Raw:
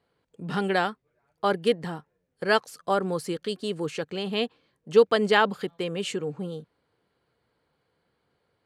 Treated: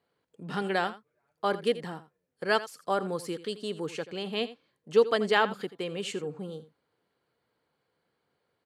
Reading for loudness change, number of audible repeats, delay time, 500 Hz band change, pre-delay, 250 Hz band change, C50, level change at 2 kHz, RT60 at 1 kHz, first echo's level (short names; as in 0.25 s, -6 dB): -3.5 dB, 1, 84 ms, -4.0 dB, none, -5.0 dB, none, -3.5 dB, none, -15.5 dB